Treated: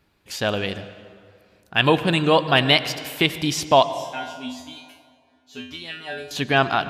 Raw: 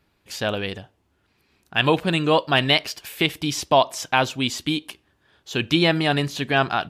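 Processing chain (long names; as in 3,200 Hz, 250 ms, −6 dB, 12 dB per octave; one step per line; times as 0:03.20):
0:03.86–0:06.31: tuned comb filter 84 Hz, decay 0.45 s, harmonics odd, mix 100%
convolution reverb RT60 2.2 s, pre-delay 82 ms, DRR 13 dB
level +1.5 dB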